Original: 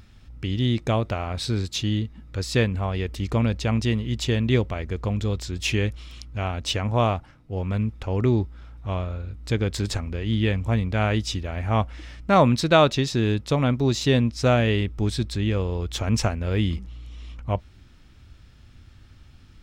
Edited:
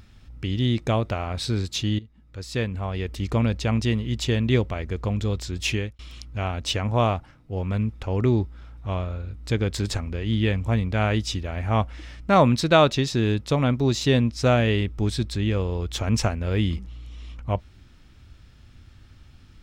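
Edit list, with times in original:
1.99–3.25 fade in, from -17.5 dB
5.69–5.99 fade out

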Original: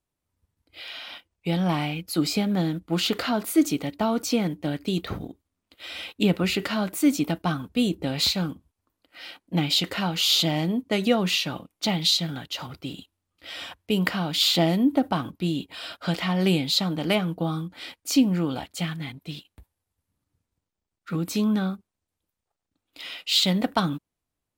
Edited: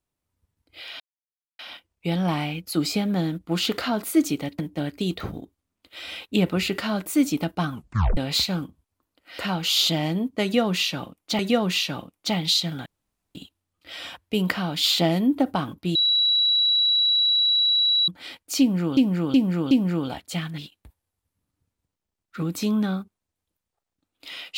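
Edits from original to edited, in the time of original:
1 insert silence 0.59 s
4–4.46 cut
7.6 tape stop 0.44 s
9.26–9.92 cut
10.96–11.92 loop, 2 plays
12.43–12.92 room tone
15.52–17.65 bleep 3910 Hz -17 dBFS
18.17–18.54 loop, 4 plays
19.04–19.31 cut

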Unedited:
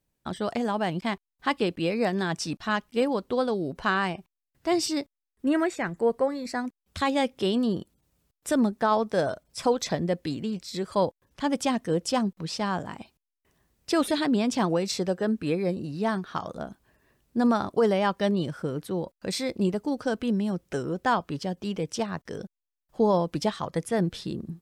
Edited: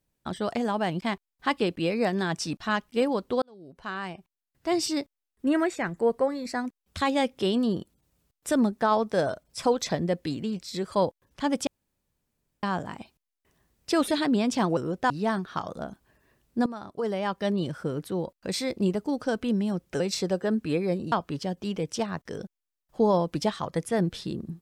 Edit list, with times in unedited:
3.42–4.94 fade in
11.67–12.63 room tone
14.77–15.89 swap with 20.79–21.12
17.45–18.55 fade in, from -18 dB

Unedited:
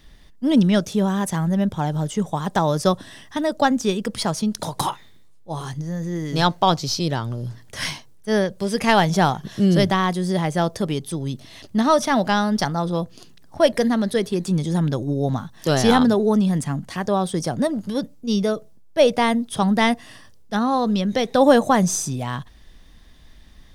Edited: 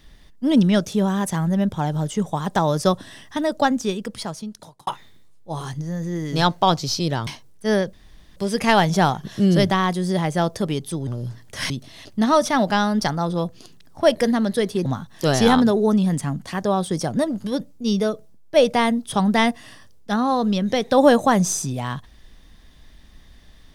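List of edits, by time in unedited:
3.54–4.87 fade out
7.27–7.9 move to 11.27
8.56 insert room tone 0.43 s
14.42–15.28 cut

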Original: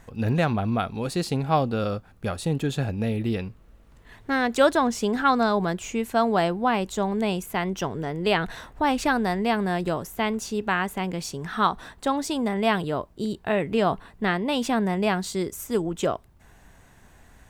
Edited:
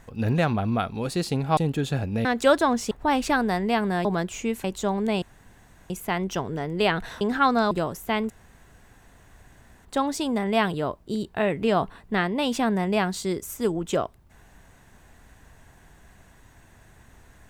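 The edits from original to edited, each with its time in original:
1.57–2.43 cut
3.11–4.39 cut
5.05–5.55 swap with 8.67–9.81
6.14–6.78 cut
7.36 insert room tone 0.68 s
10.4–11.95 room tone

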